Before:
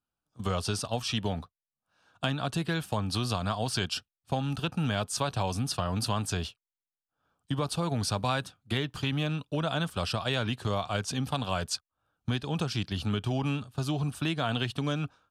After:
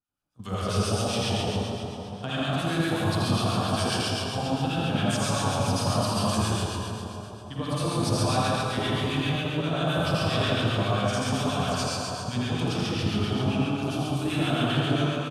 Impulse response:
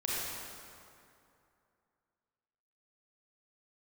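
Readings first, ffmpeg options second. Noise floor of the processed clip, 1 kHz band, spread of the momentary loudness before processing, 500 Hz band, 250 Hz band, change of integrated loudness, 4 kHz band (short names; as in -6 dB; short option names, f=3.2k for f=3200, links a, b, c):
-39 dBFS, +5.5 dB, 4 LU, +6.0 dB, +6.0 dB, +4.5 dB, +4.0 dB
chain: -filter_complex "[1:a]atrim=start_sample=2205,asetrate=30429,aresample=44100[a];[0:a][a]afir=irnorm=-1:irlink=0,acrossover=split=1200[b][c];[b]aeval=exprs='val(0)*(1-0.7/2+0.7/2*cos(2*PI*7.5*n/s))':c=same[d];[c]aeval=exprs='val(0)*(1-0.7/2-0.7/2*cos(2*PI*7.5*n/s))':c=same[e];[d][e]amix=inputs=2:normalize=0,aecho=1:1:81.63|137:0.631|0.562,volume=-3dB"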